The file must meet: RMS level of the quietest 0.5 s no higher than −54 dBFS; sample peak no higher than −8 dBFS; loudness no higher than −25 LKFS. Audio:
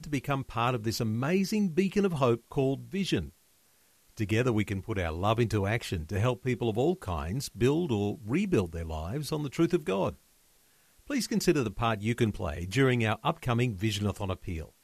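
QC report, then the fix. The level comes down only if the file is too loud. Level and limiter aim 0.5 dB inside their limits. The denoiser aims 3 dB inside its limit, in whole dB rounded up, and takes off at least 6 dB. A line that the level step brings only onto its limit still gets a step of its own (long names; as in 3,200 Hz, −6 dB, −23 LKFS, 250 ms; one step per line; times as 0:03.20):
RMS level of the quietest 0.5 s −65 dBFS: in spec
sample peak −12.0 dBFS: in spec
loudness −29.5 LKFS: in spec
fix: no processing needed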